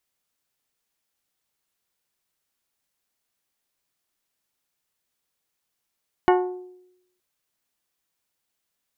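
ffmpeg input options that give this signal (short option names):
-f lavfi -i "aevalsrc='0.211*pow(10,-3*t/0.84)*sin(2*PI*364*t)+0.15*pow(10,-3*t/0.517)*sin(2*PI*728*t)+0.106*pow(10,-3*t/0.455)*sin(2*PI*873.6*t)+0.075*pow(10,-3*t/0.389)*sin(2*PI*1092*t)+0.0531*pow(10,-3*t/0.318)*sin(2*PI*1456*t)+0.0376*pow(10,-3*t/0.272)*sin(2*PI*1820*t)+0.0266*pow(10,-3*t/0.24)*sin(2*PI*2184*t)+0.0188*pow(10,-3*t/0.196)*sin(2*PI*2912*t)':d=0.92:s=44100"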